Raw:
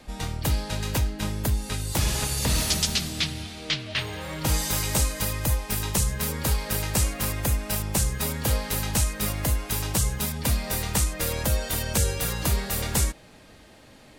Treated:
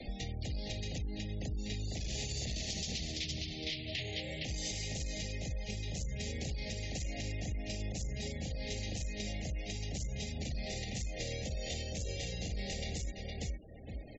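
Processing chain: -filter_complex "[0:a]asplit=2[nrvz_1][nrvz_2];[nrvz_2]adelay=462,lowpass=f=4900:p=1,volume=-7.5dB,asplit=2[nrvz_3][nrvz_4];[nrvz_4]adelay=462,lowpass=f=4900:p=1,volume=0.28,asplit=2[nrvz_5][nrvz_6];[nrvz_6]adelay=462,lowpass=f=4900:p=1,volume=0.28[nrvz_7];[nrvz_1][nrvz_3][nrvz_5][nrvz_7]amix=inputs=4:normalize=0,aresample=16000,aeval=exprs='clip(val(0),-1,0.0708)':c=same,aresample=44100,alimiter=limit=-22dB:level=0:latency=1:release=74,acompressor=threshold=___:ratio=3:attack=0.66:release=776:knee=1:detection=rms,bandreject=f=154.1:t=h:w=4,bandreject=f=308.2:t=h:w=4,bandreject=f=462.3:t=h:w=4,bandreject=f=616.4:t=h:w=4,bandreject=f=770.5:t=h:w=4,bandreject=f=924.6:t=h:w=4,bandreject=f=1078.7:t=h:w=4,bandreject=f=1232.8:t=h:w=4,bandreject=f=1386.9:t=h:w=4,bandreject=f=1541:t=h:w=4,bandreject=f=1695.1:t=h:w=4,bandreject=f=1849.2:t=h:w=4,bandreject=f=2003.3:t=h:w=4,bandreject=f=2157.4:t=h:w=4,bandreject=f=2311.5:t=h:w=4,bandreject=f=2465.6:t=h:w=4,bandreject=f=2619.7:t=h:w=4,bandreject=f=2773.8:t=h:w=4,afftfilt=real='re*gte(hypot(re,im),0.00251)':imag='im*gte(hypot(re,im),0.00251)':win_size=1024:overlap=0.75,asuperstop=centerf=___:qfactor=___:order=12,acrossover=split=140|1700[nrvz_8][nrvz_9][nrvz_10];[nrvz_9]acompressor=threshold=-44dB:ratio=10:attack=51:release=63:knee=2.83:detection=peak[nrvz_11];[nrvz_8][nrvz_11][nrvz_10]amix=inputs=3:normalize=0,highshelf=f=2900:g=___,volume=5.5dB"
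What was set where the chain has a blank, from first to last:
-42dB, 1200, 1.1, 3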